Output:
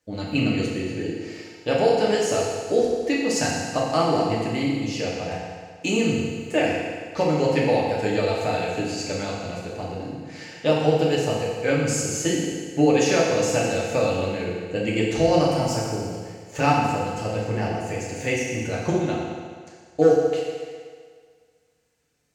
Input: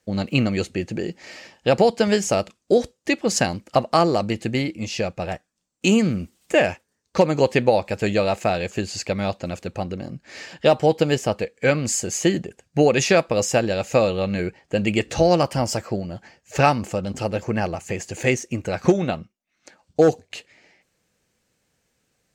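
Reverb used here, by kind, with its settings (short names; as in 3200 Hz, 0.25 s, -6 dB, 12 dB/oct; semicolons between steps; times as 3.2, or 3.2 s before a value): FDN reverb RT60 1.8 s, low-frequency decay 0.85×, high-frequency decay 0.95×, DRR -5 dB; gain -8 dB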